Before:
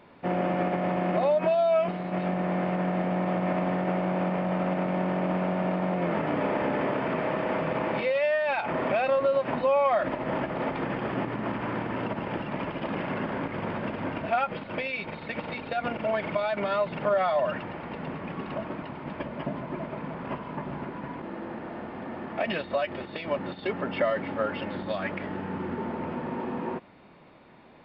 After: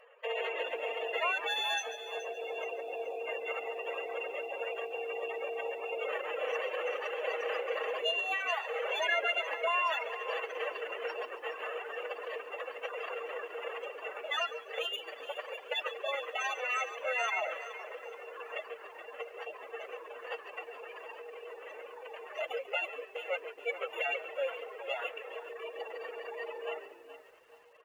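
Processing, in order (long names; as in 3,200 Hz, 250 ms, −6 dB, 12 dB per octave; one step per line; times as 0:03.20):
samples sorted by size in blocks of 16 samples
gate on every frequency bin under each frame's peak −20 dB strong
reverb reduction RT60 0.99 s
notch filter 3,800 Hz, Q 6
dynamic equaliser 3,200 Hz, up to +3 dB, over −48 dBFS, Q 3.3
brickwall limiter −21 dBFS, peak gain reduction 6 dB
Chebyshev high-pass with heavy ripple 360 Hz, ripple 6 dB
phase-vocoder pitch shift with formants kept +4 semitones
on a send: echo with shifted repeats 140 ms, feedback 35%, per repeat −62 Hz, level −14 dB
on the sum: feedback echo at a low word length 423 ms, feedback 35%, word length 10 bits, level −13 dB
level +1 dB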